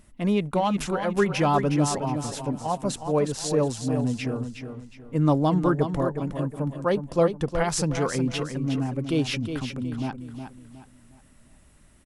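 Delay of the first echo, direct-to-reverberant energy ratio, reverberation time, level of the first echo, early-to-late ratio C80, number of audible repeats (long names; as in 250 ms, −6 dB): 364 ms, no reverb audible, no reverb audible, −8.0 dB, no reverb audible, 3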